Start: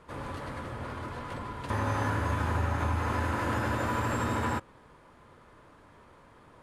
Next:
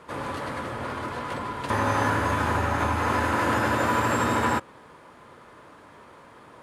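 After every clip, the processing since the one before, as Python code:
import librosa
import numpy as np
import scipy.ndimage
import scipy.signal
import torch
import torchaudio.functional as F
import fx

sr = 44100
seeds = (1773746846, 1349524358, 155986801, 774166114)

y = fx.highpass(x, sr, hz=210.0, slope=6)
y = y * librosa.db_to_amplitude(8.0)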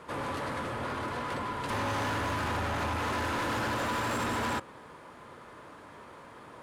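y = 10.0 ** (-29.0 / 20.0) * np.tanh(x / 10.0 ** (-29.0 / 20.0))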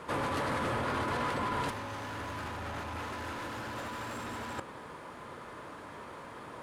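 y = fx.over_compress(x, sr, threshold_db=-35.0, ratio=-0.5)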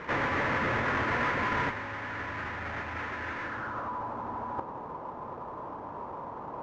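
y = fx.halfwave_hold(x, sr)
y = fx.filter_sweep_lowpass(y, sr, from_hz=1900.0, to_hz=940.0, start_s=3.42, end_s=4.01, q=3.0)
y = fx.lowpass_res(y, sr, hz=6500.0, q=2.7)
y = y * librosa.db_to_amplitude(-2.0)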